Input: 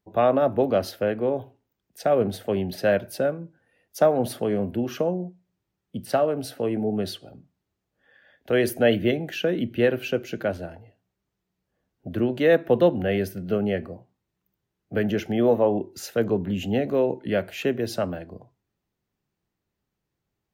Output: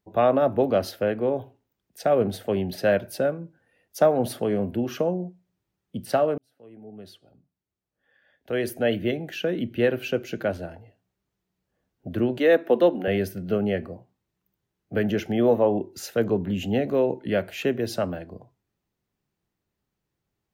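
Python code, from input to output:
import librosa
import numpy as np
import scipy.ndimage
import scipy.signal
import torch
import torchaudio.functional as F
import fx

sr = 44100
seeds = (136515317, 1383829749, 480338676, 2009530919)

y = fx.highpass(x, sr, hz=220.0, slope=24, at=(12.38, 13.08))
y = fx.edit(y, sr, fx.fade_in_span(start_s=6.38, length_s=3.94), tone=tone)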